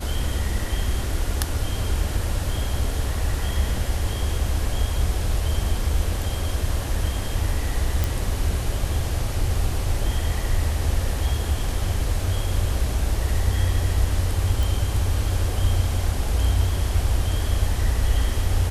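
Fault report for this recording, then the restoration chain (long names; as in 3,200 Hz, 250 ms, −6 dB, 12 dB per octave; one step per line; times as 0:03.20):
0:08.04: click
0:14.63: click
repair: click removal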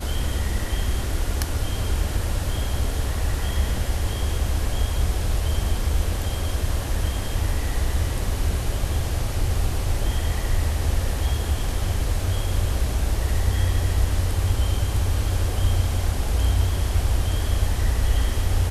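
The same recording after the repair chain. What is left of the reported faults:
none of them is left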